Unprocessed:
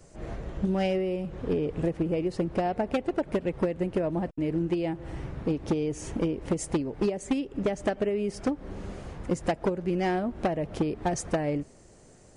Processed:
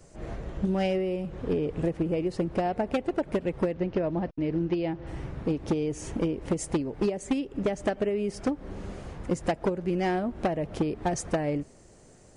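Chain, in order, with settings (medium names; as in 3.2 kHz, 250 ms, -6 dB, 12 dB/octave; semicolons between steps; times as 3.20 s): 3.72–5.07 s: steep low-pass 6 kHz 48 dB/octave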